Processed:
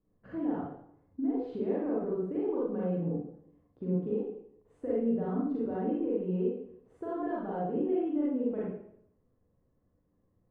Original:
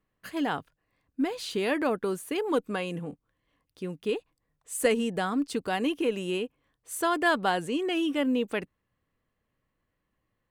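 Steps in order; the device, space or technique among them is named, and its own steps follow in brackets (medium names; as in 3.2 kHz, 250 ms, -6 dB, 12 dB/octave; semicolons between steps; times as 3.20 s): television next door (compression 5:1, threshold -36 dBFS, peak gain reduction 15.5 dB; low-pass 570 Hz 12 dB/octave; reverberation RT60 0.70 s, pre-delay 35 ms, DRR -7.5 dB)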